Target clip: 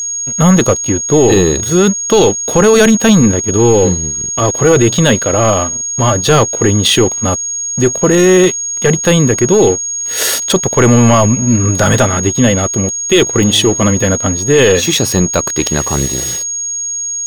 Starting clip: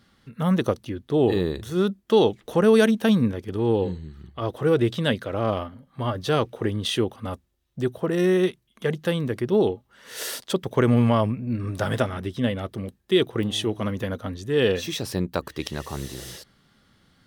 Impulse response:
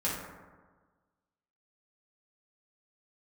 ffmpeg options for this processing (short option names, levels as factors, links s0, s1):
-af "aeval=exprs='sgn(val(0))*max(abs(val(0))-0.00562,0)':c=same,apsyclip=11.2,aeval=exprs='val(0)+0.224*sin(2*PI*6600*n/s)':c=same,volume=0.668"